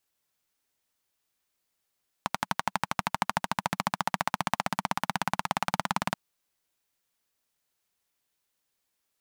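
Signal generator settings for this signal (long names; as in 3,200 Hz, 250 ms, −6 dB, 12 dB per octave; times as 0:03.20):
pulse-train model of a single-cylinder engine, changing speed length 3.88 s, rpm 1,400, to 2,200, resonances 190/880 Hz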